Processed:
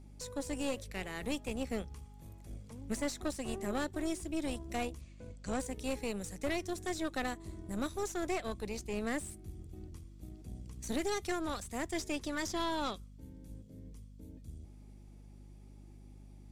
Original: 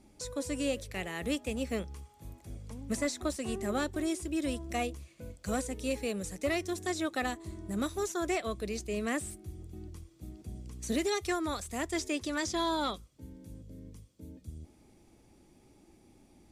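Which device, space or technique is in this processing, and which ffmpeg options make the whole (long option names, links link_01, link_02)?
valve amplifier with mains hum: -filter_complex "[0:a]aeval=exprs='(tanh(25.1*val(0)+0.7)-tanh(0.7))/25.1':channel_layout=same,aeval=exprs='val(0)+0.00251*(sin(2*PI*50*n/s)+sin(2*PI*2*50*n/s)/2+sin(2*PI*3*50*n/s)/3+sin(2*PI*4*50*n/s)/4+sin(2*PI*5*50*n/s)/5)':channel_layout=same,asettb=1/sr,asplit=3[link_01][link_02][link_03];[link_01]atrim=end=5.014[link_04];[link_02]atrim=start=5.01:end=5.6,asetpts=PTS-STARTPTS,afade=type=in:duration=0.004:curve=qsin,afade=type=out:start_time=0.586:duration=0.004:curve=qsin,lowpass=frequency=8400:width=0.5412,lowpass=frequency=8400:width=1.3066[link_05];[link_03]atrim=start=5.596[link_06];[link_04][link_05]acrossfade=duration=0.004:curve1=hsin:curve2=qsin[link_07];[link_07][link_06]acrossfade=duration=0.004:curve1=qsin:curve2=hsin"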